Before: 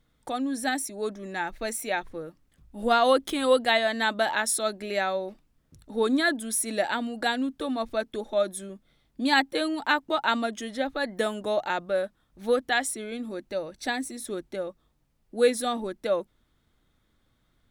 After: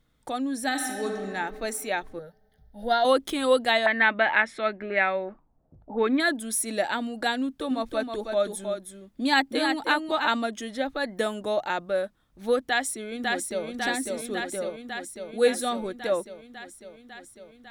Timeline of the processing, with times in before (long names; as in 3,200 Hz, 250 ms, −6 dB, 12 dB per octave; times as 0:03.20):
0:00.66–0:01.20: thrown reverb, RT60 2.5 s, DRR 2 dB
0:02.19–0:03.05: phaser with its sweep stopped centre 1,700 Hz, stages 8
0:03.86–0:06.20: envelope-controlled low-pass 660–2,200 Hz up, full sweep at −25 dBFS
0:07.39–0:10.28: single-tap delay 318 ms −6 dB
0:12.60–0:13.66: delay throw 550 ms, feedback 75%, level −2.5 dB